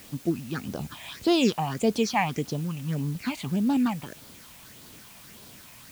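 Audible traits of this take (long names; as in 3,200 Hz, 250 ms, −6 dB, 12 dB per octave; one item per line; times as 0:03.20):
phaser sweep stages 6, 1.7 Hz, lowest notch 370–2,200 Hz
a quantiser's noise floor 8 bits, dither triangular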